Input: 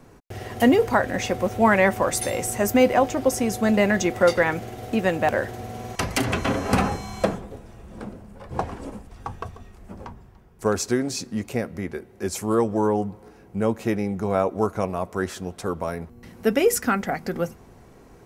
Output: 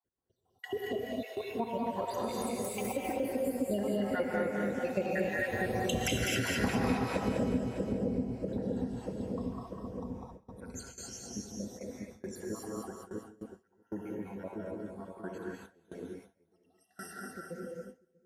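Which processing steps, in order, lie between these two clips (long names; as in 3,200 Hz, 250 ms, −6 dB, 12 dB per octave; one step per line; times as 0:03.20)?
time-frequency cells dropped at random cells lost 80%
source passing by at 0:05.94, 6 m/s, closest 2.6 metres
notch filter 1,200 Hz, Q 5.5
echo with a time of its own for lows and highs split 550 Hz, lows 640 ms, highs 201 ms, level −3 dB
reverb whose tail is shaped and stops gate 290 ms rising, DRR −3 dB
downward compressor 3 to 1, threshold −42 dBFS, peak gain reduction 16.5 dB
dynamic equaliser 270 Hz, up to +3 dB, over −56 dBFS, Q 1.2
noise gate with hold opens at −43 dBFS
high-pass filter 48 Hz
parametric band 110 Hz −3.5 dB 0.73 octaves
level +9 dB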